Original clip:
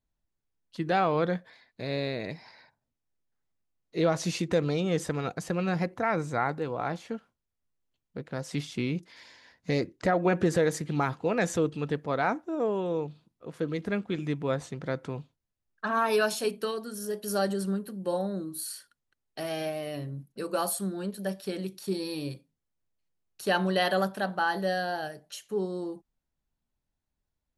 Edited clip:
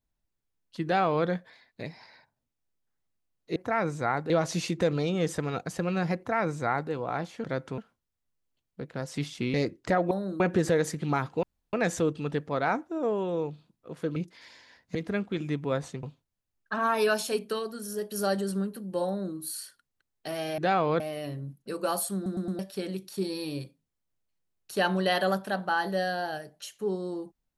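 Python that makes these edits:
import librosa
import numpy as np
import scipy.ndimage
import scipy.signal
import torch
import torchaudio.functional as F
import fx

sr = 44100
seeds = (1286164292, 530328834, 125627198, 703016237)

y = fx.edit(x, sr, fx.duplicate(start_s=0.84, length_s=0.42, to_s=19.7),
    fx.cut(start_s=1.83, length_s=0.45),
    fx.duplicate(start_s=5.88, length_s=0.74, to_s=4.01),
    fx.move(start_s=8.91, length_s=0.79, to_s=13.73),
    fx.insert_room_tone(at_s=11.3, length_s=0.3),
    fx.move(start_s=14.81, length_s=0.34, to_s=7.15),
    fx.duplicate(start_s=18.19, length_s=0.29, to_s=10.27),
    fx.stutter_over(start_s=20.85, slice_s=0.11, count=4), tone=tone)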